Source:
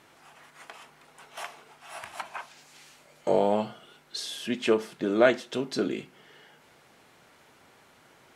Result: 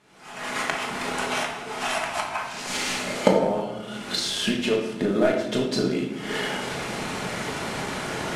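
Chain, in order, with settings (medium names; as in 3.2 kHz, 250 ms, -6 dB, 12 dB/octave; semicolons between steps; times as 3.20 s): CVSD coder 64 kbps; recorder AGC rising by 57 dB/s; low-pass 9.7 kHz 12 dB/octave; bass shelf 220 Hz +8 dB; simulated room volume 390 m³, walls mixed, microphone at 1.4 m; in parallel at -11.5 dB: crossover distortion -16.5 dBFS; on the sum: bass shelf 67 Hz -8 dB; hum notches 50/100/150 Hz; trim -7 dB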